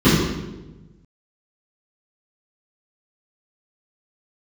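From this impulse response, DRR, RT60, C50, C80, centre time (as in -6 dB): -17.0 dB, 1.1 s, -1.0 dB, 1.5 dB, 88 ms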